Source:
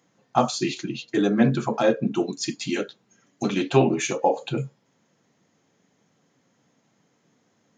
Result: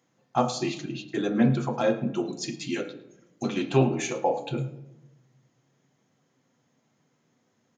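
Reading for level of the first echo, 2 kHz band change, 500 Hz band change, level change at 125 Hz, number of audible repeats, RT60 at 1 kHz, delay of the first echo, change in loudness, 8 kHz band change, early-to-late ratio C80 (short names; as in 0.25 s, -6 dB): -19.0 dB, -4.5 dB, -4.0 dB, -1.0 dB, 1, 0.75 s, 0.108 s, -3.5 dB, -4.5 dB, 14.0 dB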